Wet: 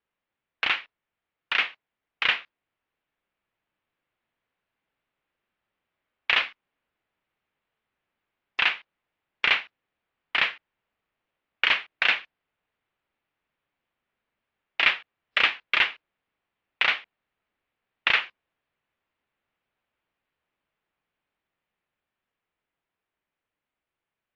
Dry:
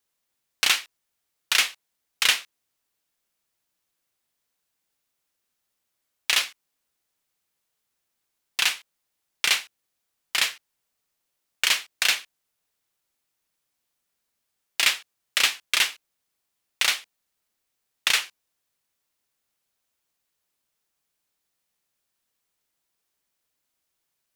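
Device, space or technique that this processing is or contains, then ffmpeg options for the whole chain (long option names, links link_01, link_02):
action camera in a waterproof case: -af "lowpass=frequency=2800:width=0.5412,lowpass=frequency=2800:width=1.3066,dynaudnorm=framelen=300:gausssize=21:maxgain=4dB" -ar 24000 -c:a aac -b:a 96k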